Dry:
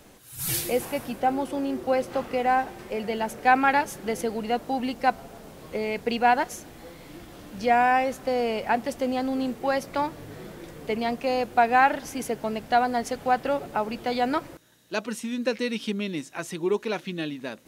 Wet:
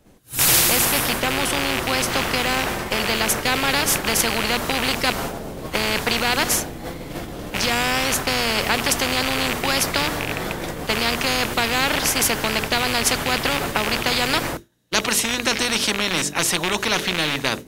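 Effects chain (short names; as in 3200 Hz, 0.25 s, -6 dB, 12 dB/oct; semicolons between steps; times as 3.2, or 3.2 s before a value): rattling part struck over -39 dBFS, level -29 dBFS; de-hum 48.66 Hz, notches 9; expander -35 dBFS; low shelf 420 Hz +9.5 dB; spectral compressor 4:1; gain +4 dB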